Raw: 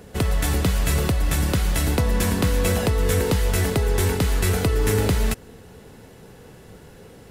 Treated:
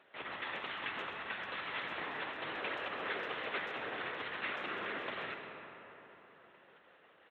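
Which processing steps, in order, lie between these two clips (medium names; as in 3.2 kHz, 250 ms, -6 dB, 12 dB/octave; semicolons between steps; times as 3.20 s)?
distance through air 160 m; LPC vocoder at 8 kHz whisper; high-pass 1.3 kHz 12 dB/octave; tilt EQ -2 dB/octave; speakerphone echo 130 ms, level -14 dB; algorithmic reverb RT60 4.1 s, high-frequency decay 0.45×, pre-delay 40 ms, DRR 4 dB; trim -5.5 dB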